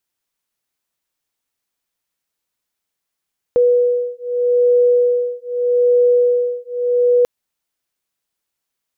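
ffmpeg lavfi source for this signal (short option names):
-f lavfi -i "aevalsrc='0.178*(sin(2*PI*488*t)+sin(2*PI*488.81*t))':d=3.69:s=44100"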